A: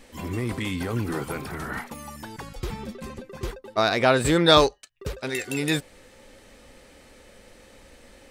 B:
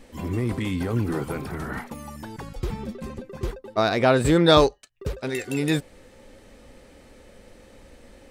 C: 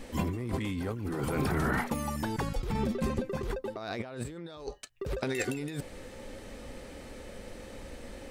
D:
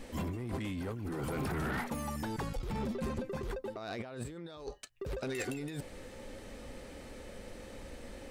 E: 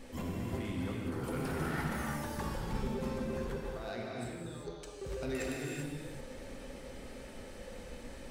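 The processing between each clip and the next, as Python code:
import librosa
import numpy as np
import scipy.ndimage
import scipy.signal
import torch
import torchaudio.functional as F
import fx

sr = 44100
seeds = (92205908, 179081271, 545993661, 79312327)

y1 = fx.tilt_shelf(x, sr, db=3.5, hz=830.0)
y2 = fx.over_compress(y1, sr, threshold_db=-32.0, ratio=-1.0)
y2 = y2 * librosa.db_to_amplitude(-2.0)
y3 = 10.0 ** (-27.5 / 20.0) * np.tanh(y2 / 10.0 ** (-27.5 / 20.0))
y3 = y3 * librosa.db_to_amplitude(-2.5)
y4 = fx.rev_gated(y3, sr, seeds[0], gate_ms=420, shape='flat', drr_db=-2.5)
y4 = y4 * librosa.db_to_amplitude(-4.0)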